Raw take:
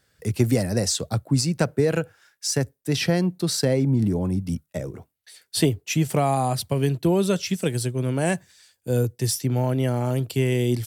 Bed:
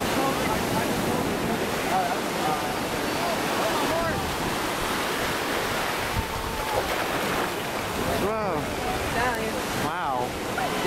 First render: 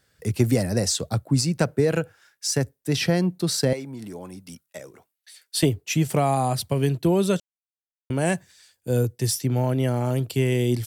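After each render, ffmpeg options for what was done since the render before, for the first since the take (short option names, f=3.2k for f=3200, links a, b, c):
-filter_complex "[0:a]asettb=1/sr,asplit=3[a][b][c];[a]atrim=end=3.734[d];[b]atrim=start=3.73:end=5.63,asetpts=PTS-STARTPTS,afade=t=in:d=0.004:c=qsin,afade=t=out:st=1.896:d=0.004:c=qsin,highpass=f=1.2k:p=1[e];[c]atrim=start=5.626[f];[d][e]acrossfade=d=0.004:c1=hsin:c2=qsin[g];[g][f]acrossfade=d=0.004:c1=qsin:c2=hsin,asplit=3[h][i][j];[h]atrim=end=7.4,asetpts=PTS-STARTPTS,afade=t=out:st=7.396:d=0.004:c=hsin[k];[i]atrim=start=7.4:end=8.1,asetpts=PTS-STARTPTS,volume=0[l];[j]atrim=start=8.1,asetpts=PTS-STARTPTS,afade=t=in:d=0.004:c=hsin[m];[k][l][m]concat=n=3:v=0:a=1"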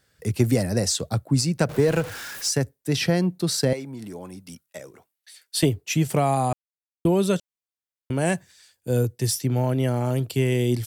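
-filter_complex "[0:a]asettb=1/sr,asplit=3[a][b][c];[a]atrim=end=1.694[d];[b]atrim=start=1.69:end=2.49,asetpts=PTS-STARTPTS,afade=t=in:d=0.004:c=qsin,afade=t=out:st=0.796:d=0.004:c=qsin,aeval=exprs='val(0)+0.5*0.0299*sgn(val(0))':c=same[e];[c]atrim=start=2.486[f];[d][e]acrossfade=d=0.004:c1=hsin:c2=qsin[g];[g][f]acrossfade=d=0.004:c1=qsin:c2=hsin,asplit=3[h][i][j];[h]atrim=end=6.53,asetpts=PTS-STARTPTS,afade=t=out:st=6.526:d=0.004:c=hsin[k];[i]atrim=start=6.53:end=7.05,asetpts=PTS-STARTPTS,volume=0[l];[j]atrim=start=7.05,asetpts=PTS-STARTPTS,afade=t=in:d=0.004:c=hsin[m];[k][l][m]concat=n=3:v=0:a=1"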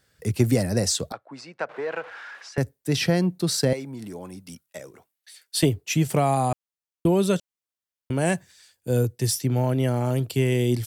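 -filter_complex "[0:a]asettb=1/sr,asplit=3[a][b][c];[a]atrim=end=1.124[d];[b]atrim=start=1.12:end=2.58,asetpts=PTS-STARTPTS,afade=t=in:d=0.004:c=qsin,afade=t=out:st=1.456:d=0.004:c=qsin,highpass=750,lowpass=2k[e];[c]atrim=start=2.576[f];[d][e]acrossfade=d=0.004:c1=hsin:c2=qsin[g];[g][f]acrossfade=d=0.004:c1=qsin:c2=hsin"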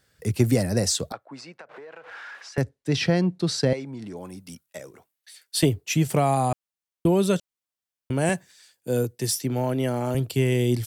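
-filter_complex "[0:a]asettb=1/sr,asplit=3[a][b][c];[a]atrim=end=1.514[d];[b]atrim=start=1.51:end=2.09,asetpts=PTS-STARTPTS,afade=t=in:d=0.004:c=qsin,afade=t=out:st=0.576:d=0.004:c=qsin,acompressor=threshold=-39dB:ratio=16:attack=3.2:release=140:knee=1:detection=peak[e];[c]atrim=start=2.086[f];[d][e]acrossfade=d=0.004:c1=hsin:c2=qsin[g];[g][f]acrossfade=d=0.004:c1=qsin:c2=hsin,asettb=1/sr,asplit=3[h][i][j];[h]atrim=end=2.614[k];[i]atrim=start=2.61:end=4.17,asetpts=PTS-STARTPTS,afade=t=in:d=0.004:c=qsin,afade=t=out:st=1.556:d=0.004:c=qsin,lowpass=5.7k[l];[j]atrim=start=4.166[m];[k][l]acrossfade=d=0.004:c1=hsin:c2=qsin[n];[n][m]acrossfade=d=0.004:c1=qsin:c2=hsin,asettb=1/sr,asplit=3[o][p][q];[o]atrim=end=8.294[r];[p]atrim=start=8.29:end=10.15,asetpts=PTS-STARTPTS,afade=t=in:d=0.004:c=qsin,afade=t=out:st=1.856:d=0.004:c=qsin,highpass=160[s];[q]atrim=start=10.146[t];[r][s]acrossfade=d=0.004:c1=hsin:c2=qsin[u];[u][t]acrossfade=d=0.004:c1=qsin:c2=hsin"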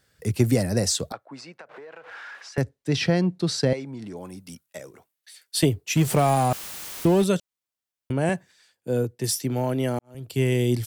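-filter_complex "[0:a]asettb=1/sr,asplit=3[a][b][c];[a]atrim=end=5.964[d];[b]atrim=start=5.96:end=7.24,asetpts=PTS-STARTPTS,afade=t=in:d=0.004:c=qsin,afade=t=out:st=1.276:d=0.004:c=qsin,aeval=exprs='val(0)+0.5*0.0398*sgn(val(0))':c=same[e];[c]atrim=start=7.236[f];[d][e]acrossfade=d=0.004:c1=hsin:c2=qsin[g];[g][f]acrossfade=d=0.004:c1=qsin:c2=hsin,asettb=1/sr,asplit=3[h][i][j];[h]atrim=end=8.124[k];[i]atrim=start=8.12:end=9.24,asetpts=PTS-STARTPTS,afade=t=in:d=0.004:c=qsin,afade=t=out:st=1.116:d=0.004:c=qsin,highshelf=f=4k:g=-10.5[l];[j]atrim=start=9.236[m];[k][l]acrossfade=d=0.004:c1=hsin:c2=qsin[n];[n][m]acrossfade=d=0.004:c1=qsin:c2=hsin,asplit=2[o][p];[o]atrim=end=9.99,asetpts=PTS-STARTPTS,afade=t=out:st=9.986:d=0.004:c=hsin[q];[p]atrim=start=9.99,asetpts=PTS-STARTPTS,afade=t=in:d=0.43:c=qua[r];[q][r]concat=n=2:v=0:a=1"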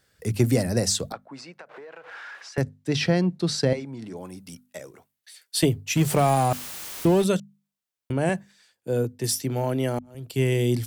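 -af "bandreject=f=50:t=h:w=6,bandreject=f=100:t=h:w=6,bandreject=f=150:t=h:w=6,bandreject=f=200:t=h:w=6,bandreject=f=250:t=h:w=6"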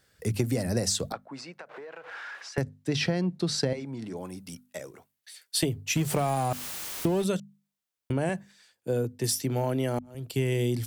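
-af "acompressor=threshold=-23dB:ratio=6"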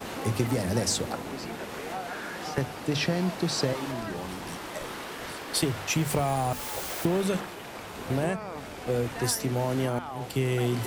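-filter_complex "[1:a]volume=-11.5dB[a];[0:a][a]amix=inputs=2:normalize=0"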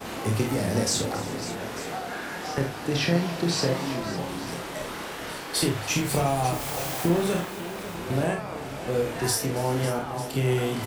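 -filter_complex "[0:a]asplit=2[a][b];[b]adelay=29,volume=-5.5dB[c];[a][c]amix=inputs=2:normalize=0,aecho=1:1:47|276|364|549|896:0.501|0.141|0.106|0.224|0.168"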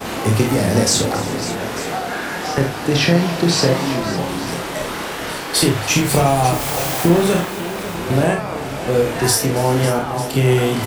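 -af "volume=9.5dB,alimiter=limit=-2dB:level=0:latency=1"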